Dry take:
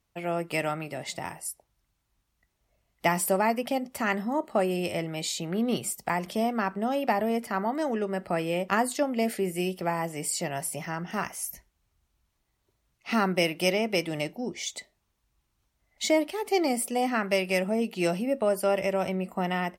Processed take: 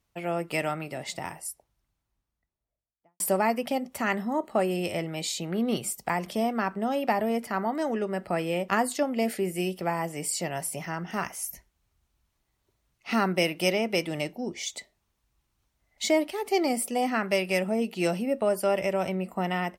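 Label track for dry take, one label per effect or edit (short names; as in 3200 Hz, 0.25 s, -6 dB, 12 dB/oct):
1.290000	3.200000	studio fade out
3.830000	4.600000	notch 4900 Hz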